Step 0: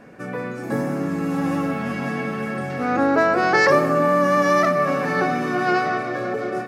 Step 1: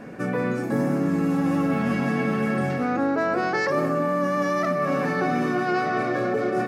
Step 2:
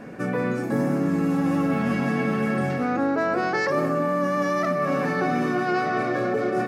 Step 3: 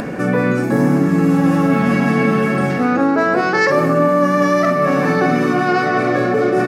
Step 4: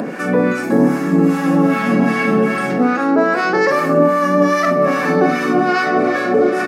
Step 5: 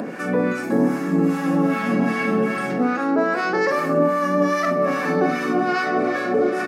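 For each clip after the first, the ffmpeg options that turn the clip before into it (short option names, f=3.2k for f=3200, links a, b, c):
-af "areverse,acompressor=threshold=-26dB:ratio=6,areverse,equalizer=f=220:w=0.65:g=4,volume=3.5dB"
-af anull
-filter_complex "[0:a]asplit=2[a][b];[b]adelay=48,volume=-8dB[c];[a][c]amix=inputs=2:normalize=0,acompressor=mode=upward:threshold=-26dB:ratio=2.5,volume=8dB"
-filter_complex "[0:a]highpass=f=180:w=0.5412,highpass=f=180:w=1.3066,acrossover=split=940[a][b];[a]aeval=exprs='val(0)*(1-0.7/2+0.7/2*cos(2*PI*2.5*n/s))':c=same[c];[b]aeval=exprs='val(0)*(1-0.7/2-0.7/2*cos(2*PI*2.5*n/s))':c=same[d];[c][d]amix=inputs=2:normalize=0,volume=4dB"
-af "bandreject=f=50:t=h:w=6,bandreject=f=100:t=h:w=6,bandreject=f=150:t=h:w=6,volume=-5.5dB"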